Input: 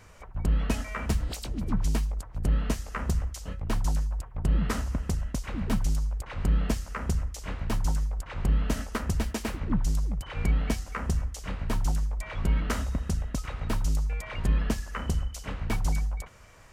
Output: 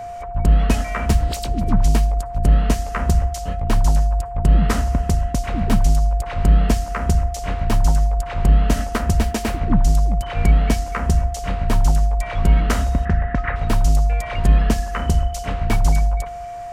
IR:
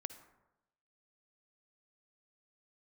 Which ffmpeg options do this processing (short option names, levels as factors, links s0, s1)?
-filter_complex "[0:a]asettb=1/sr,asplit=3[s0][s1][s2];[s0]atrim=end=13.054[s3];[s1]atrim=start=13.05:end=13.56,asetpts=PTS-STARTPTS,afade=t=in:d=0.004:c=qsin,afade=t=out:st=0.506:d=0.004:c=qsin,lowpass=f=1800:t=q:w=4.7[s4];[s2]atrim=start=13.556[s5];[s3][s4]acrossfade=d=0.004:c1=hsin:c2=qsin[s6];[s6][s5]acrossfade=d=0.004:c1=qsin:c2=hsin,aeval=exprs='val(0)+0.0141*sin(2*PI*700*n/s)':c=same,asplit=2[s7][s8];[1:a]atrim=start_sample=2205,lowshelf=f=150:g=10[s9];[s8][s9]afir=irnorm=-1:irlink=0,volume=0.376[s10];[s7][s10]amix=inputs=2:normalize=0,volume=2.11"